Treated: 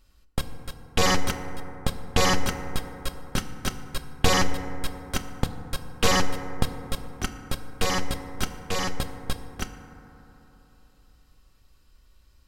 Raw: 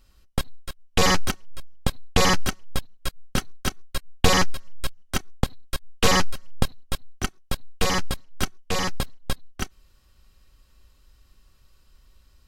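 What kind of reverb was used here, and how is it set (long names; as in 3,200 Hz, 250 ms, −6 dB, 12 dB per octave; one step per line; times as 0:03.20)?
feedback delay network reverb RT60 3.6 s, high-frequency decay 0.25×, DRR 7.5 dB
level −2.5 dB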